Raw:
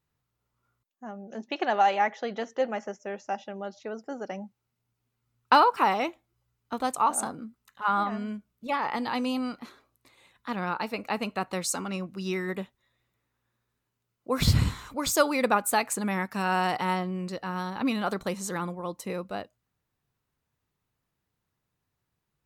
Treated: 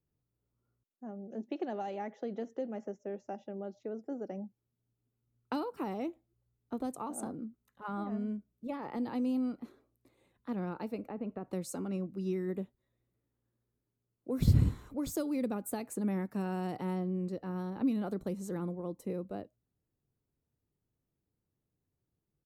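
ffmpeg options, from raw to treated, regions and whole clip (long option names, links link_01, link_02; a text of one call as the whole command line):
ffmpeg -i in.wav -filter_complex "[0:a]asettb=1/sr,asplit=3[link_01][link_02][link_03];[link_01]atrim=end=11.074[link_04];[link_02]atrim=start=11.07:end=11.51,asetpts=PTS-STARTPTS,afade=type=in:duration=0.004:curve=qsin,afade=type=out:start_time=0.436:duration=0.004:curve=qsin,lowpass=2000,acompressor=threshold=-31dB:ratio=2.5:attack=3.2:release=140:knee=1:detection=peak[link_05];[link_03]atrim=start=11.506[link_06];[link_04][link_05]acrossfade=duration=0.004:curve1=hsin:curve2=qsin[link_07];[link_07][link_06]acrossfade=duration=0.004:curve1=qsin:curve2=hsin,firequalizer=gain_entry='entry(210,0);entry(310,3);entry(970,-12);entry(3000,-16);entry(4800,-16);entry(12000,-9)':delay=0.05:min_phase=1,acrossover=split=290|3000[link_08][link_09][link_10];[link_09]acompressor=threshold=-35dB:ratio=6[link_11];[link_08][link_11][link_10]amix=inputs=3:normalize=0,volume=-2dB" out.wav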